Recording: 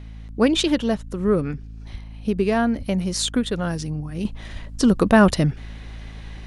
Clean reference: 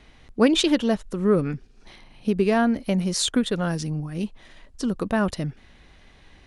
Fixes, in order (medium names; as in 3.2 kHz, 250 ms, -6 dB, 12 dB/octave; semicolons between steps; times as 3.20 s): de-hum 54.5 Hz, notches 5; de-plosive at 1.26/1.91/2.78/4.52 s; trim 0 dB, from 4.25 s -9 dB